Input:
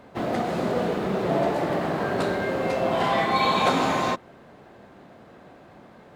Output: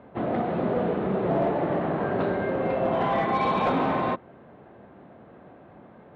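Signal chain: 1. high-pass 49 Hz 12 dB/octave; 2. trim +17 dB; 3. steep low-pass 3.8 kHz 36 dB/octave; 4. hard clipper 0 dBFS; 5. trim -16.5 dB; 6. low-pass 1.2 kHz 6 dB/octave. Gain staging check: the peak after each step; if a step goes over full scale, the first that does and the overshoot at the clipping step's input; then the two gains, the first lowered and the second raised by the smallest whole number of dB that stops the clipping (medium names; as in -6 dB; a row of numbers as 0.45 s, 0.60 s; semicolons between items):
-8.0 dBFS, +9.0 dBFS, +8.0 dBFS, 0.0 dBFS, -16.5 dBFS, -16.5 dBFS; step 2, 8.0 dB; step 2 +9 dB, step 5 -8.5 dB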